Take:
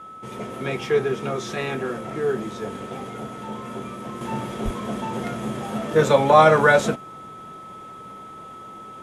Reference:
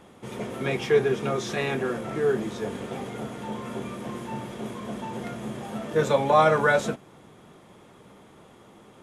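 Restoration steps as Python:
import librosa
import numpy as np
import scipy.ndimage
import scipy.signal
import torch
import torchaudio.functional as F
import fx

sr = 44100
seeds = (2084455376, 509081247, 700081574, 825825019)

y = fx.notch(x, sr, hz=1300.0, q=30.0)
y = fx.highpass(y, sr, hz=140.0, slope=24, at=(4.64, 4.76), fade=0.02)
y = fx.gain(y, sr, db=fx.steps((0.0, 0.0), (4.21, -5.5)))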